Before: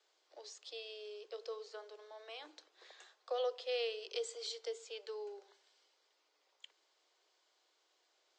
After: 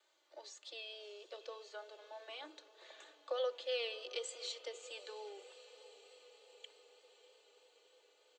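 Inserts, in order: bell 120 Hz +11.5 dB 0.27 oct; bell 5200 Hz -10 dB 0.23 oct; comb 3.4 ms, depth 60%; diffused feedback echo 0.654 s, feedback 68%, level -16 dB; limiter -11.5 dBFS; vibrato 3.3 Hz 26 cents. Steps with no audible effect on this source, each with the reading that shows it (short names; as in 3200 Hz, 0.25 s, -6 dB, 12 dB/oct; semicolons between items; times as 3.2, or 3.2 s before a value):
bell 120 Hz: input band starts at 380 Hz; limiter -11.5 dBFS: input peak -24.5 dBFS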